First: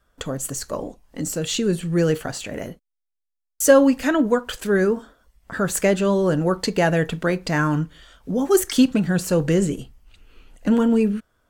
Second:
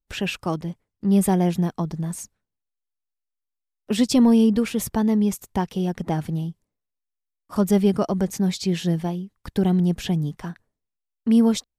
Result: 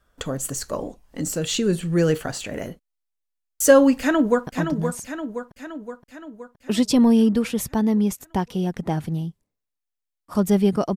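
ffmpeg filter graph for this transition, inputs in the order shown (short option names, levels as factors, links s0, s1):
-filter_complex "[0:a]apad=whole_dur=10.96,atrim=end=10.96,atrim=end=4.472[s0];[1:a]atrim=start=1.678:end=8.17[s1];[s0][s1]acrossfade=d=0.004:c1=hsin:c2=hsin,asplit=2[s2][s3];[s3]afade=t=in:st=4:d=0.01,afade=t=out:st=4.47:d=0.01,aecho=0:1:520|1040|1560|2080|2600|3120|3640|4160:0.446684|0.26801|0.160806|0.0964837|0.0578902|0.0347341|0.0208405|0.0125043[s4];[s2][s4]amix=inputs=2:normalize=0"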